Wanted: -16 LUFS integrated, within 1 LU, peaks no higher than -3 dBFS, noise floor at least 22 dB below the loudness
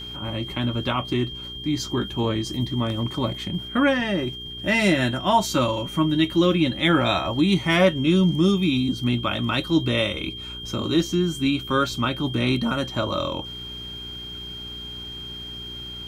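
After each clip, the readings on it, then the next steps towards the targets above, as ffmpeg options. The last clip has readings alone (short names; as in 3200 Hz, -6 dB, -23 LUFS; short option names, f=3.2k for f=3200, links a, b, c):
hum 60 Hz; harmonics up to 420 Hz; hum level -42 dBFS; steady tone 3200 Hz; tone level -34 dBFS; loudness -23.5 LUFS; peak -5.5 dBFS; loudness target -16.0 LUFS
-> -af "bandreject=f=60:t=h:w=4,bandreject=f=120:t=h:w=4,bandreject=f=180:t=h:w=4,bandreject=f=240:t=h:w=4,bandreject=f=300:t=h:w=4,bandreject=f=360:t=h:w=4,bandreject=f=420:t=h:w=4"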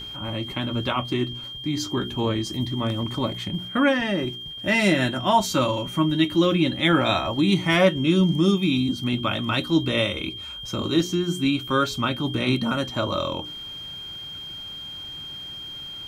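hum none; steady tone 3200 Hz; tone level -34 dBFS
-> -af "bandreject=f=3.2k:w=30"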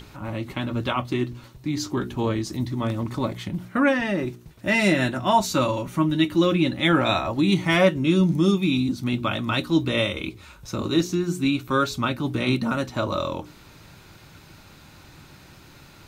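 steady tone none; loudness -23.5 LUFS; peak -6.0 dBFS; loudness target -16.0 LUFS
-> -af "volume=7.5dB,alimiter=limit=-3dB:level=0:latency=1"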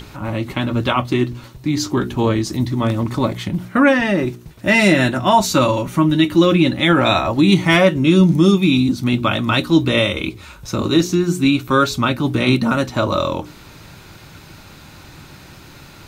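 loudness -16.5 LUFS; peak -3.0 dBFS; noise floor -42 dBFS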